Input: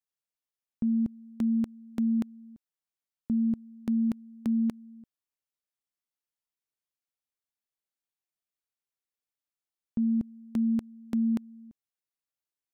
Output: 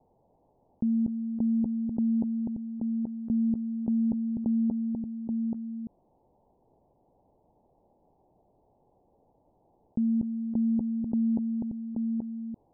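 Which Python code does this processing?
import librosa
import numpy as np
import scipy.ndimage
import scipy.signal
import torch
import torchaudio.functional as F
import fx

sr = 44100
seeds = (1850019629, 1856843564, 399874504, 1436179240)

y = scipy.signal.sosfilt(scipy.signal.butter(12, 900.0, 'lowpass', fs=sr, output='sos'), x)
y = y + 10.0 ** (-13.0 / 20.0) * np.pad(y, (int(830 * sr / 1000.0), 0))[:len(y)]
y = fx.env_flatten(y, sr, amount_pct=70)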